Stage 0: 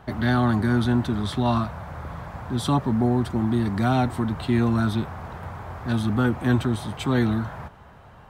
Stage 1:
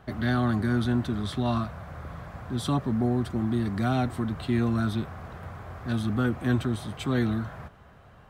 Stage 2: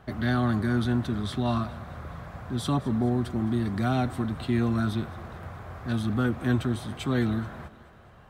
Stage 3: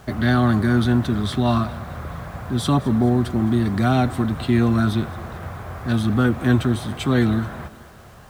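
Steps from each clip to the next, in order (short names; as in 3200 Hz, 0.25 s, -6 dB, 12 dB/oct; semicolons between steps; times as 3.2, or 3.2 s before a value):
bell 900 Hz -9 dB 0.22 oct; gain -4 dB
thinning echo 0.213 s, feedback 54%, high-pass 180 Hz, level -18 dB
bit-crush 10-bit; gain +7.5 dB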